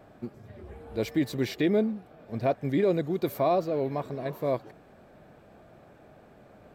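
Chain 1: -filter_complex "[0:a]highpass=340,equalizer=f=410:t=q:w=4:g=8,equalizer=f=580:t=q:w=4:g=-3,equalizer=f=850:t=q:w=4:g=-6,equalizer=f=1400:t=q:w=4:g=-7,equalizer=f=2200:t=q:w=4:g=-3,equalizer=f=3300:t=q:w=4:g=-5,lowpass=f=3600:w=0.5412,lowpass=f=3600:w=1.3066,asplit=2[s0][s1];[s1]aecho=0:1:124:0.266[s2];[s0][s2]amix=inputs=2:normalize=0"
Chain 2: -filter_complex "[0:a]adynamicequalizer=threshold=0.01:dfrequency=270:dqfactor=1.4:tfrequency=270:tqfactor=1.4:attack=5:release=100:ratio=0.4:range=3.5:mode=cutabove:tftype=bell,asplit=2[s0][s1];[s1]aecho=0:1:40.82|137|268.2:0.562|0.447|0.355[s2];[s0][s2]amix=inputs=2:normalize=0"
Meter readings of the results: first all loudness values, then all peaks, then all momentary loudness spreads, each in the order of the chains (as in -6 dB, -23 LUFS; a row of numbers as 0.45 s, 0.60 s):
-28.0 LUFS, -28.0 LUFS; -12.0 dBFS, -12.5 dBFS; 21 LU, 16 LU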